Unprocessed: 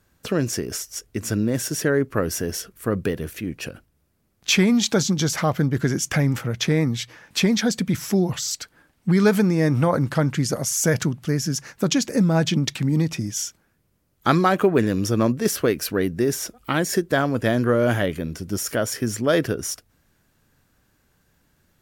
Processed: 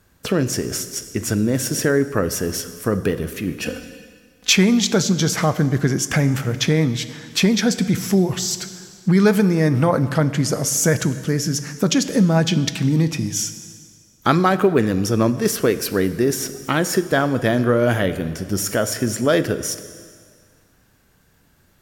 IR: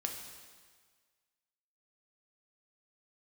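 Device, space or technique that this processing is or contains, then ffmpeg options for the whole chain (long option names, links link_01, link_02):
ducked reverb: -filter_complex "[0:a]asplit=3[link_01][link_02][link_03];[1:a]atrim=start_sample=2205[link_04];[link_02][link_04]afir=irnorm=-1:irlink=0[link_05];[link_03]apad=whole_len=961859[link_06];[link_05][link_06]sidechaincompress=threshold=-21dB:ratio=4:attack=5.1:release=1420,volume=1.5dB[link_07];[link_01][link_07]amix=inputs=2:normalize=0,asettb=1/sr,asplit=3[link_08][link_09][link_10];[link_08]atrim=end=3.654[link_11];[link_09]atrim=start=3.65:end=4.53,asetpts=PTS-STARTPTS,afade=type=in:duration=0.004:curve=qsin,afade=type=out:start_time=0.876:duration=0.004:curve=qsin,aecho=1:1:4:0.92,atrim=end_sample=38808[link_12];[link_10]atrim=start=4.526[link_13];[link_11][link_12]acrossfade=duration=0.004:curve1=hsin:curve2=qsin[link_14];[link_14][link_13]acrossfade=duration=0.004:curve1=qsin:curve2=hsin,volume=-1dB"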